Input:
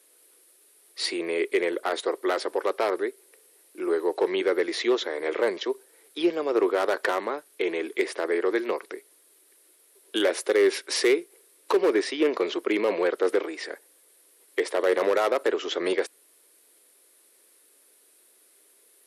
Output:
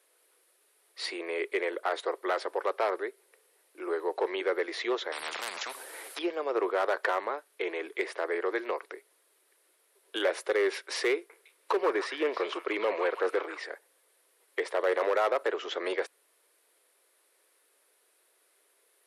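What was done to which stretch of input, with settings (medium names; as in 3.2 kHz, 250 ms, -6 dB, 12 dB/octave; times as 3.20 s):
5.12–6.19 s: spectrum-flattening compressor 10:1
11.14–13.60 s: repeats whose band climbs or falls 157 ms, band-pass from 1.3 kHz, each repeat 1.4 oct, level -4 dB
whole clip: high-pass 570 Hz 12 dB/octave; treble shelf 3.3 kHz -11.5 dB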